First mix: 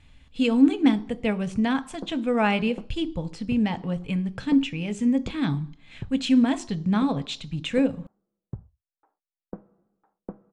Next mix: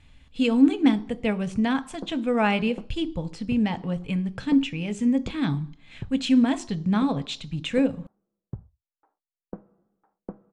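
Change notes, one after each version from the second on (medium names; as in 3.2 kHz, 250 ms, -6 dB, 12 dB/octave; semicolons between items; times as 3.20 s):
no change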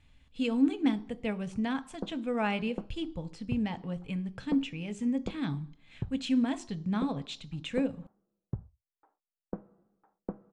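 speech -8.0 dB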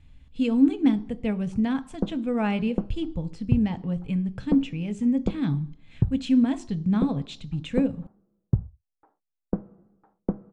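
background +4.0 dB; master: add bass shelf 340 Hz +11 dB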